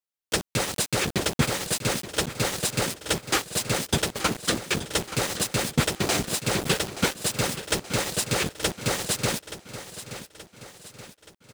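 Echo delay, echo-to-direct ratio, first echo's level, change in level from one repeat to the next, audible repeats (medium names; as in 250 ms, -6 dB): 876 ms, -12.0 dB, -13.0 dB, -6.0 dB, 4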